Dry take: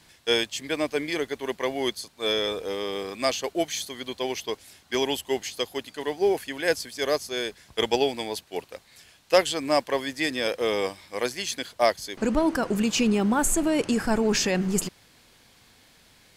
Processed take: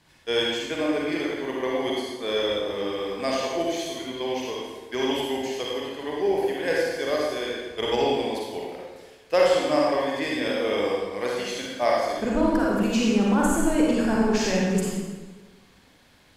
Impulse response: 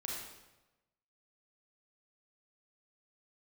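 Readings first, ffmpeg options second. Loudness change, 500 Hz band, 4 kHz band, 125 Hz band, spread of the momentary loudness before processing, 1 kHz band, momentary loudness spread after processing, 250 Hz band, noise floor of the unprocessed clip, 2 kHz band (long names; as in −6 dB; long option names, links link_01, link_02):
+1.0 dB, +2.0 dB, −1.5 dB, +2.5 dB, 9 LU, +2.0 dB, 10 LU, +2.5 dB, −58 dBFS, 0.0 dB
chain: -filter_complex "[0:a]highshelf=frequency=3400:gain=-8[link_01];[1:a]atrim=start_sample=2205,asetrate=34839,aresample=44100[link_02];[link_01][link_02]afir=irnorm=-1:irlink=0"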